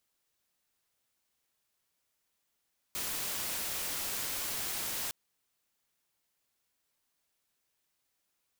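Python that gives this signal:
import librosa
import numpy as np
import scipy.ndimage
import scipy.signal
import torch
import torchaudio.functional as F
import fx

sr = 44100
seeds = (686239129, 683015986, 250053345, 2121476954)

y = fx.noise_colour(sr, seeds[0], length_s=2.16, colour='white', level_db=-36.0)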